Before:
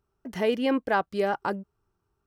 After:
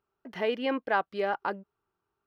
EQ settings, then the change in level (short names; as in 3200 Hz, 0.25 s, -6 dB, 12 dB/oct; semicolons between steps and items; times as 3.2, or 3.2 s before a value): air absorption 350 m; RIAA curve recording; 0.0 dB